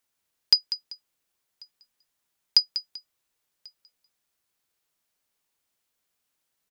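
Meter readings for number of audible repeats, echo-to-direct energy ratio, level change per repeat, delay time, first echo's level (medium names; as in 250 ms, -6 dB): 2, -11.5 dB, -11.0 dB, 194 ms, -12.0 dB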